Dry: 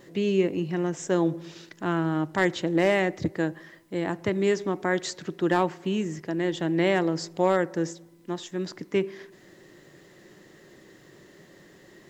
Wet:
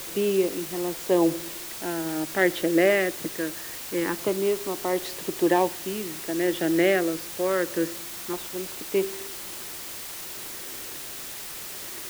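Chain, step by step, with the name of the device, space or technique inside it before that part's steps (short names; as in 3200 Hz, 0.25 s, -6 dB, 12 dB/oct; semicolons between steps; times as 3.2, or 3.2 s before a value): shortwave radio (BPF 310–2800 Hz; tremolo 0.75 Hz, depth 52%; LFO notch saw down 0.24 Hz 670–1900 Hz; white noise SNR 10 dB); gain +6 dB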